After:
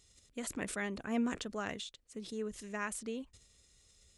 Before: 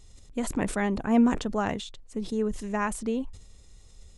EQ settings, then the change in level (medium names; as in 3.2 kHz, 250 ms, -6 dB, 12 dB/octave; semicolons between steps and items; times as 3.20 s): high-pass 43 Hz; bass shelf 430 Hz -11 dB; peaking EQ 870 Hz -9 dB 0.75 oct; -4.0 dB